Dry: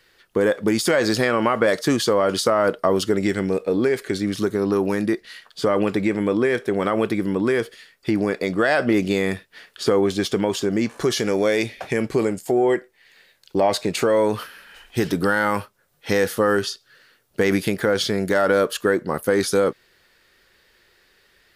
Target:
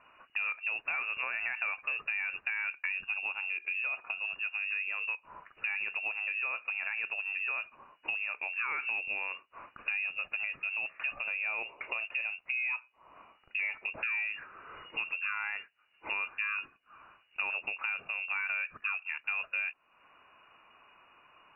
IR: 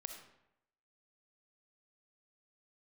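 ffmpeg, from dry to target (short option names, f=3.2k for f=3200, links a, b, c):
-af "acompressor=threshold=-40dB:ratio=2.5,lowpass=f=2.5k:t=q:w=0.5098,lowpass=f=2.5k:t=q:w=0.6013,lowpass=f=2.5k:t=q:w=0.9,lowpass=f=2.5k:t=q:w=2.563,afreqshift=-2900"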